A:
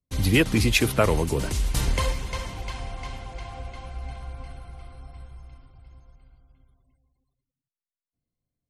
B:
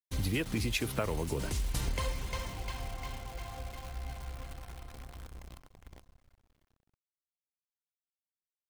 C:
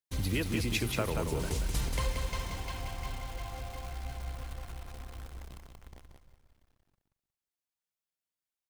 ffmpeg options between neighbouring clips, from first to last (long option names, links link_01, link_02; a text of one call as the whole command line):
ffmpeg -i in.wav -af "agate=range=-7dB:threshold=-51dB:ratio=16:detection=peak,acompressor=threshold=-23dB:ratio=6,acrusher=bits=8:dc=4:mix=0:aa=0.000001,volume=-5.5dB" out.wav
ffmpeg -i in.wav -af "aecho=1:1:181|362|543:0.562|0.141|0.0351" out.wav